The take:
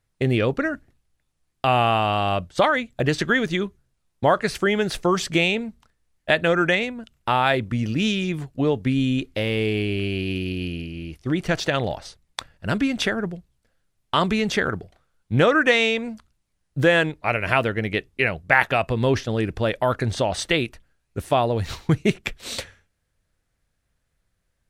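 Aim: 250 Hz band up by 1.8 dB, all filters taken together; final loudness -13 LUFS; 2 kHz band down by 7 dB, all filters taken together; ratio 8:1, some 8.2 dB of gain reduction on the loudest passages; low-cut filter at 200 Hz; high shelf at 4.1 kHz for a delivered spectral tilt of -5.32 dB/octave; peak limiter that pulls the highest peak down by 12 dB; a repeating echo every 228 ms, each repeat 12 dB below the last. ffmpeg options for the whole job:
-af "highpass=200,equalizer=f=250:t=o:g=4.5,equalizer=f=2000:t=o:g=-8.5,highshelf=f=4100:g=-3.5,acompressor=threshold=0.0794:ratio=8,alimiter=limit=0.0944:level=0:latency=1,aecho=1:1:228|456|684:0.251|0.0628|0.0157,volume=8.41"

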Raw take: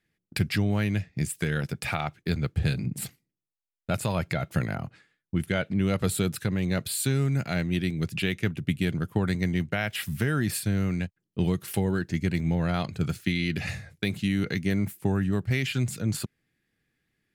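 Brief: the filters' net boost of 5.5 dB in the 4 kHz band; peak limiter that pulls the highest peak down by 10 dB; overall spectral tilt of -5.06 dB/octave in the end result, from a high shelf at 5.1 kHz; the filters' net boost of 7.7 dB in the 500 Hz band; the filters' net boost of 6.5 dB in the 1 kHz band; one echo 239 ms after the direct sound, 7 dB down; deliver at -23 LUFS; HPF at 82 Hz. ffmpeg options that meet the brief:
-af "highpass=82,equalizer=f=500:t=o:g=8.5,equalizer=f=1000:t=o:g=6,equalizer=f=4000:t=o:g=9,highshelf=f=5100:g=-6.5,alimiter=limit=0.133:level=0:latency=1,aecho=1:1:239:0.447,volume=1.88"

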